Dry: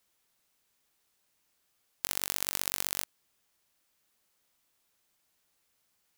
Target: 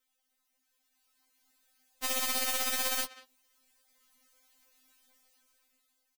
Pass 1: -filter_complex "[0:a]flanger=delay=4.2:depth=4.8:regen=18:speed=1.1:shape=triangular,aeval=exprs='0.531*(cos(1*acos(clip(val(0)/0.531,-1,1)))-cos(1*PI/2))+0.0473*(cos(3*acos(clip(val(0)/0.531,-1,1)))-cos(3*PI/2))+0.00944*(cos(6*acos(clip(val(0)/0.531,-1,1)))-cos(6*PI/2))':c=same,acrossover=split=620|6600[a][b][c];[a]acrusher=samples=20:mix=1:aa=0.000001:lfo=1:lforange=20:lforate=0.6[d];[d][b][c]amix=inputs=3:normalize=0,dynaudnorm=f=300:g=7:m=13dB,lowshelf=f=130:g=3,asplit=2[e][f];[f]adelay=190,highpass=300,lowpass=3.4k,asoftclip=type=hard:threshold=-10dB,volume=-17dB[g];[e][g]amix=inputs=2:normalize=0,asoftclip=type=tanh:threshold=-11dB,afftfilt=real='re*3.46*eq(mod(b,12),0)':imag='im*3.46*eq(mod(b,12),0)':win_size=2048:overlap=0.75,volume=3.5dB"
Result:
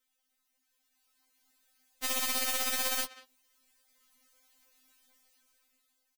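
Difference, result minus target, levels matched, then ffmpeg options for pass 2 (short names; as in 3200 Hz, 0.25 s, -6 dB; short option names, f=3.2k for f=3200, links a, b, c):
decimation with a swept rate: distortion +11 dB
-filter_complex "[0:a]flanger=delay=4.2:depth=4.8:regen=18:speed=1.1:shape=triangular,aeval=exprs='0.531*(cos(1*acos(clip(val(0)/0.531,-1,1)))-cos(1*PI/2))+0.0473*(cos(3*acos(clip(val(0)/0.531,-1,1)))-cos(3*PI/2))+0.00944*(cos(6*acos(clip(val(0)/0.531,-1,1)))-cos(6*PI/2))':c=same,acrossover=split=620|6600[a][b][c];[a]acrusher=samples=6:mix=1:aa=0.000001:lfo=1:lforange=6:lforate=0.6[d];[d][b][c]amix=inputs=3:normalize=0,dynaudnorm=f=300:g=7:m=13dB,lowshelf=f=130:g=3,asplit=2[e][f];[f]adelay=190,highpass=300,lowpass=3.4k,asoftclip=type=hard:threshold=-10dB,volume=-17dB[g];[e][g]amix=inputs=2:normalize=0,asoftclip=type=tanh:threshold=-11dB,afftfilt=real='re*3.46*eq(mod(b,12),0)':imag='im*3.46*eq(mod(b,12),0)':win_size=2048:overlap=0.75,volume=3.5dB"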